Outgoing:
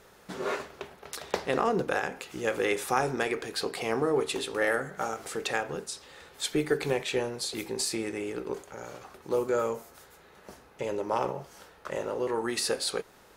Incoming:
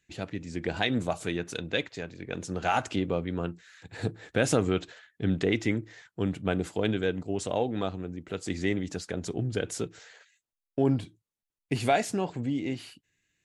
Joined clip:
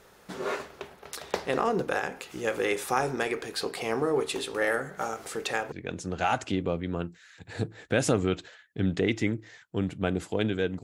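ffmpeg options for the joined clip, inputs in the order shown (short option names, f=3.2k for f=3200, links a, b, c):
-filter_complex "[0:a]apad=whole_dur=10.83,atrim=end=10.83,atrim=end=5.722[a];[1:a]atrim=start=2.158:end=7.27[b];[a][b]acrossfade=d=0.004:c1=hsin:c2=hsin"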